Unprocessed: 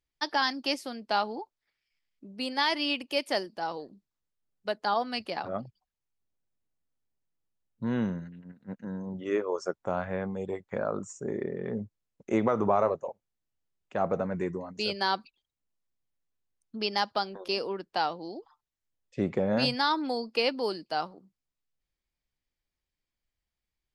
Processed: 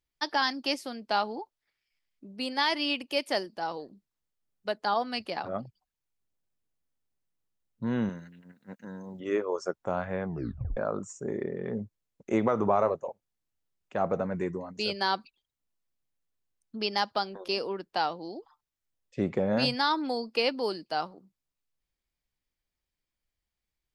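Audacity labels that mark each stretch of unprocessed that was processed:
8.090000	9.200000	tilt +2.5 dB/oct
10.260000	10.260000	tape stop 0.51 s

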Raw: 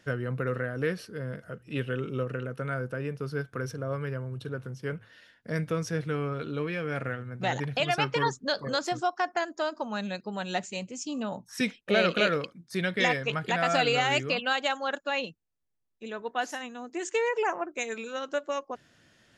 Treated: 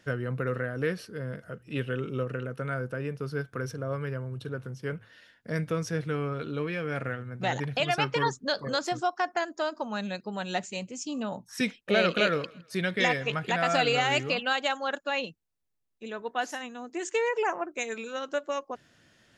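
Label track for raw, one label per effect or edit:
12.180000	14.430000	thinning echo 0.162 s, feedback 37%, level -23.5 dB

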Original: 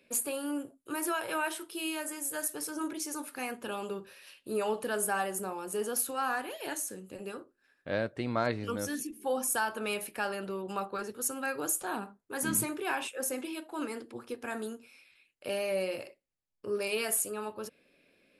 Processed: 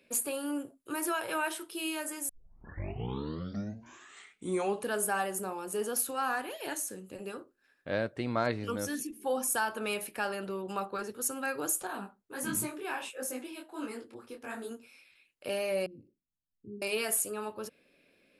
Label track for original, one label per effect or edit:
2.290000	2.290000	tape start 2.61 s
11.870000	14.710000	detuned doubles each way 51 cents
15.860000	16.820000	inverse Chebyshev low-pass stop band from 580 Hz

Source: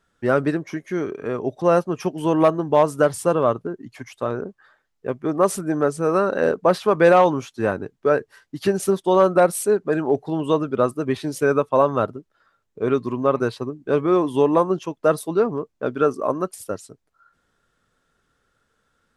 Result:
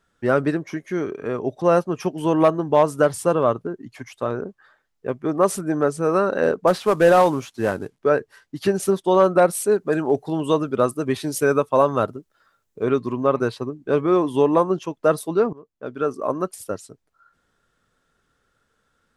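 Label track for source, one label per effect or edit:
6.670000	7.990000	CVSD 64 kbps
9.710000	12.850000	high shelf 6300 Hz +10.5 dB
15.530000	16.430000	fade in, from -22 dB

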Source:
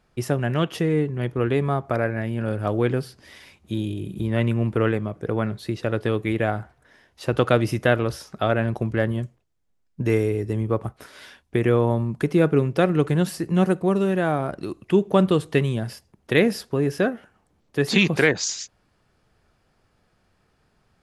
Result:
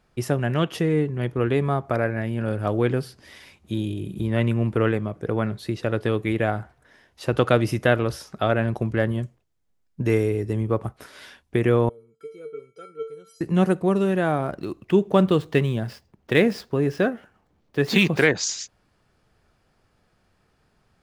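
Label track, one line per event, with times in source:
11.890000	13.410000	resonator 450 Hz, decay 0.27 s, harmonics odd, mix 100%
14.440000	18.220000	median filter over 5 samples

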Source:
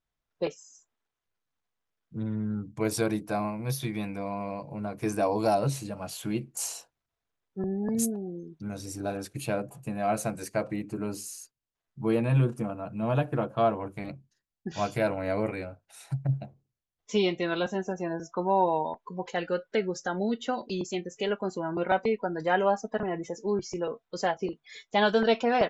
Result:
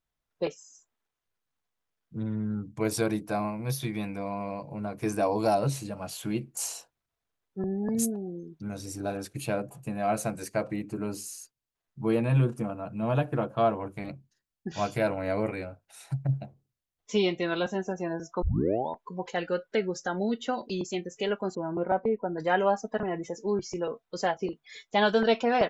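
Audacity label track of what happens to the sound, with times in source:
18.420000	18.420000	tape start 0.47 s
21.550000	22.380000	LPF 1000 Hz

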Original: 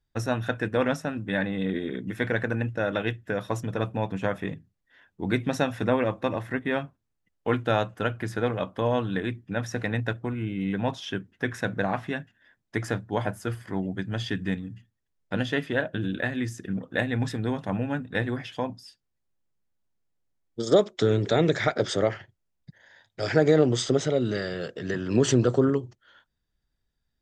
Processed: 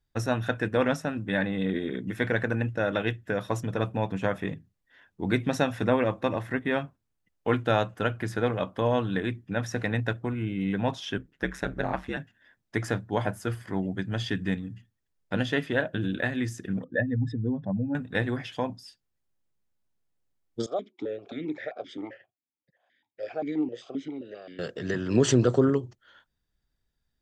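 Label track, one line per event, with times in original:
11.170000	12.170000	ring modulator 68 Hz
16.840000	17.950000	spectral contrast raised exponent 2.2
20.660000	24.590000	vowel sequencer 7.6 Hz

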